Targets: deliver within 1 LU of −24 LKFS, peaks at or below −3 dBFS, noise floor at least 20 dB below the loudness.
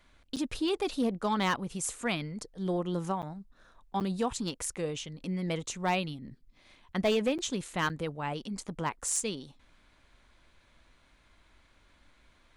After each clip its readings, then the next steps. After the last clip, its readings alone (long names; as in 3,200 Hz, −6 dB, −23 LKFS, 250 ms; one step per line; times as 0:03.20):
share of clipped samples 0.2%; peaks flattened at −21.0 dBFS; number of dropouts 5; longest dropout 8.1 ms; integrated loudness −33.0 LKFS; sample peak −21.0 dBFS; target loudness −24.0 LKFS
→ clipped peaks rebuilt −21 dBFS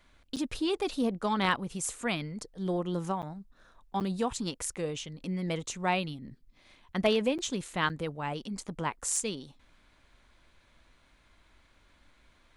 share of clipped samples 0.0%; number of dropouts 5; longest dropout 8.1 ms
→ repair the gap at 0:00.36/0:03.22/0:04.00/0:07.38/0:07.89, 8.1 ms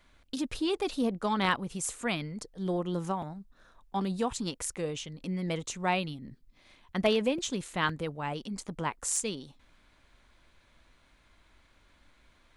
number of dropouts 0; integrated loudness −32.5 LKFS; sample peak −12.5 dBFS; target loudness −24.0 LKFS
→ level +8.5 dB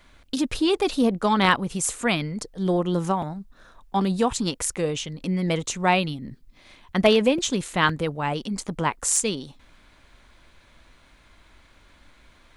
integrated loudness −24.0 LKFS; sample peak −4.0 dBFS; background noise floor −56 dBFS